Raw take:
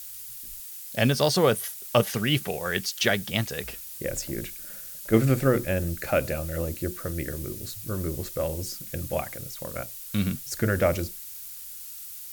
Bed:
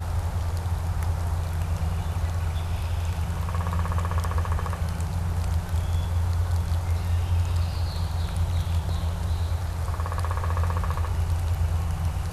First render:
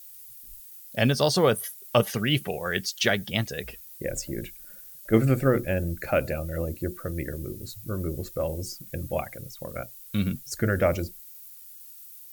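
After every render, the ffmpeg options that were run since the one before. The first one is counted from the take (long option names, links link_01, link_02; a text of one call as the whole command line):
ffmpeg -i in.wav -af "afftdn=noise_reduction=11:noise_floor=-41" out.wav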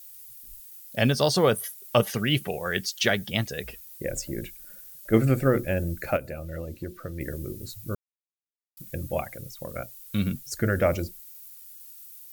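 ffmpeg -i in.wav -filter_complex "[0:a]asettb=1/sr,asplit=3[link_01][link_02][link_03];[link_01]atrim=end=6.164[link_04];[link_02]atrim=start=6.16:end=7.21,asetpts=PTS-STARTPTS,afade=type=in:duration=0.004:curve=qsin,afade=type=out:start_time=1.046:duration=0.004:curve=qsin,acrossover=split=2400|5500[link_05][link_06][link_07];[link_05]acompressor=threshold=-32dB:ratio=4[link_08];[link_06]acompressor=threshold=-53dB:ratio=4[link_09];[link_07]acompressor=threshold=-54dB:ratio=4[link_10];[link_08][link_09][link_10]amix=inputs=3:normalize=0[link_11];[link_03]atrim=start=7.206[link_12];[link_04][link_11]acrossfade=duration=0.004:curve1=hsin:curve2=qsin[link_13];[link_13][link_12]acrossfade=duration=0.004:curve1=qsin:curve2=hsin,asplit=3[link_14][link_15][link_16];[link_14]atrim=end=7.95,asetpts=PTS-STARTPTS,afade=type=out:start_time=7.946:duration=0.004:curve=hsin[link_17];[link_15]atrim=start=7.95:end=8.77,asetpts=PTS-STARTPTS,volume=0[link_18];[link_16]atrim=start=8.77,asetpts=PTS-STARTPTS,afade=type=in:duration=0.004:curve=hsin[link_19];[link_17][link_18][link_19]concat=n=3:v=0:a=1" out.wav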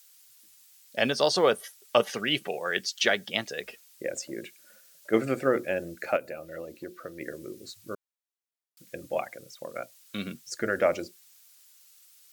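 ffmpeg -i in.wav -filter_complex "[0:a]highpass=330,acrossover=split=8200[link_01][link_02];[link_02]acompressor=threshold=-58dB:ratio=4:attack=1:release=60[link_03];[link_01][link_03]amix=inputs=2:normalize=0" out.wav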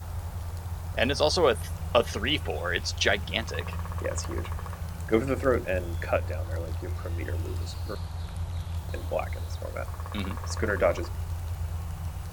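ffmpeg -i in.wav -i bed.wav -filter_complex "[1:a]volume=-8dB[link_01];[0:a][link_01]amix=inputs=2:normalize=0" out.wav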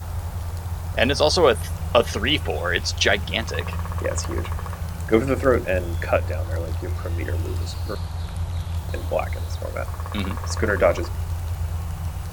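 ffmpeg -i in.wav -af "volume=6dB,alimiter=limit=-3dB:level=0:latency=1" out.wav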